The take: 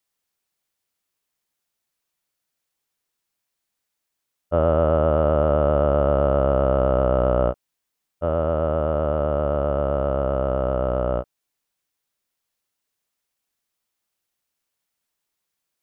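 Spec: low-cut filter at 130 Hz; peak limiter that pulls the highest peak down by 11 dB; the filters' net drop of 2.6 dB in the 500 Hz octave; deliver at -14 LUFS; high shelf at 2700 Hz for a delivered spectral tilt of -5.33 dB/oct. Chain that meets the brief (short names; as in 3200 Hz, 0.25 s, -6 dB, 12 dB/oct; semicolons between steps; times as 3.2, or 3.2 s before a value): HPF 130 Hz; bell 500 Hz -3.5 dB; high shelf 2700 Hz +8.5 dB; gain +19 dB; limiter -0.5 dBFS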